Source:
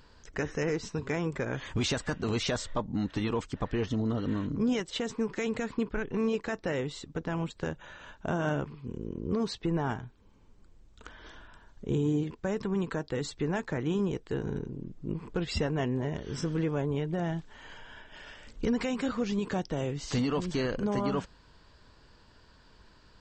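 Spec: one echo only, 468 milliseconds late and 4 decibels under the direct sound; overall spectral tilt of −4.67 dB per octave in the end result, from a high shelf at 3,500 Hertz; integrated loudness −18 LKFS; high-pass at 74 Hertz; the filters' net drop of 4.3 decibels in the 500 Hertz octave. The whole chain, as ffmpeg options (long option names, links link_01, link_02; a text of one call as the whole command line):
ffmpeg -i in.wav -af "highpass=74,equalizer=frequency=500:width_type=o:gain=-5.5,highshelf=frequency=3500:gain=8,aecho=1:1:468:0.631,volume=14dB" out.wav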